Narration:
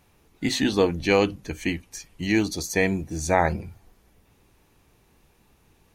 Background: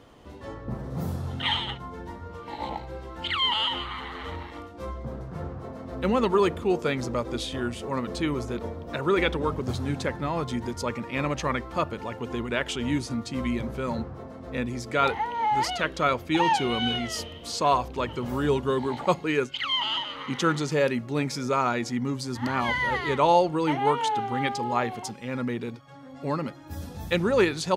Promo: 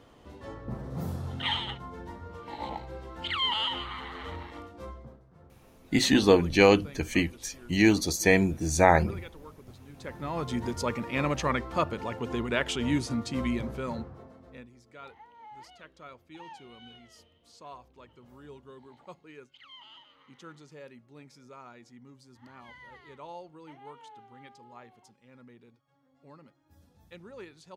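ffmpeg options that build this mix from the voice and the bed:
ffmpeg -i stem1.wav -i stem2.wav -filter_complex "[0:a]adelay=5500,volume=1dB[link_01];[1:a]volume=17dB,afade=type=out:start_time=4.69:duration=0.51:silence=0.133352,afade=type=in:start_time=9.93:duration=0.7:silence=0.0944061,afade=type=out:start_time=13.32:duration=1.38:silence=0.0668344[link_02];[link_01][link_02]amix=inputs=2:normalize=0" out.wav

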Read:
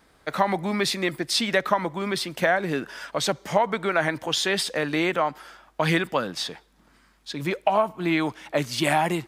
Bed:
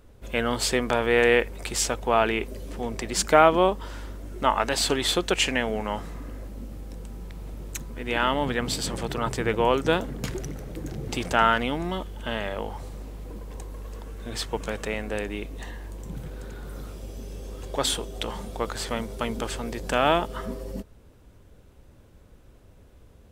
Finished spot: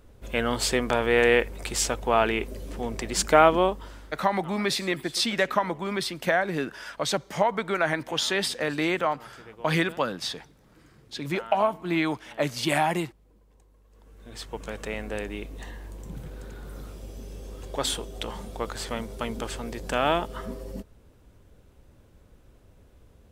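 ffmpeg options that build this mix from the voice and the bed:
ffmpeg -i stem1.wav -i stem2.wav -filter_complex "[0:a]adelay=3850,volume=-2dB[link_01];[1:a]volume=19dB,afade=type=out:start_time=3.5:duration=0.78:silence=0.0841395,afade=type=in:start_time=13.89:duration=1.11:silence=0.105925[link_02];[link_01][link_02]amix=inputs=2:normalize=0" out.wav

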